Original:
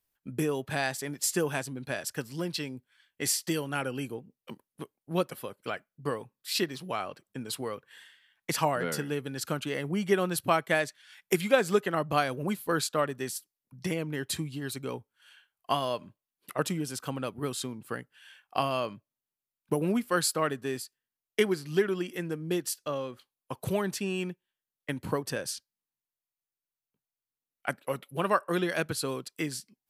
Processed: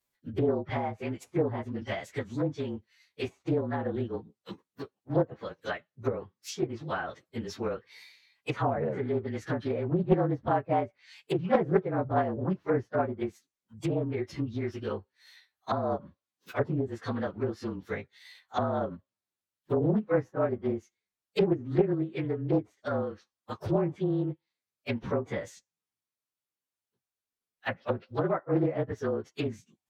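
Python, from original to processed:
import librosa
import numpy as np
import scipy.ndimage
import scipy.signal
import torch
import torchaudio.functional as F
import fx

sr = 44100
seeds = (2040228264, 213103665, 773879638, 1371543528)

y = fx.partial_stretch(x, sr, pct=111)
y = fx.low_shelf(y, sr, hz=66.0, db=-11.0)
y = fx.pitch_keep_formants(y, sr, semitones=-2.5)
y = fx.env_lowpass_down(y, sr, base_hz=750.0, full_db=-30.5)
y = fx.doppler_dist(y, sr, depth_ms=0.43)
y = F.gain(torch.from_numpy(y), 6.0).numpy()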